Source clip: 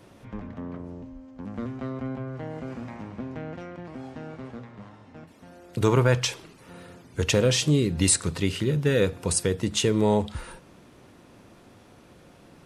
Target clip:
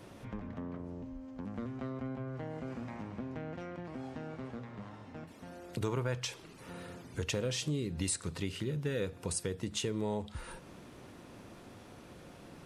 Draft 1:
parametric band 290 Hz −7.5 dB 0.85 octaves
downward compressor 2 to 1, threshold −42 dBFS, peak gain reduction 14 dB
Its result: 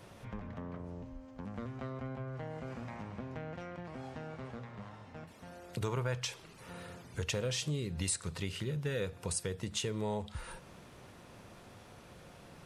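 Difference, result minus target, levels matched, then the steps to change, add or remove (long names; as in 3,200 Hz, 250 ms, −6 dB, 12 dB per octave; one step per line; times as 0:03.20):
250 Hz band −2.5 dB
remove: parametric band 290 Hz −7.5 dB 0.85 octaves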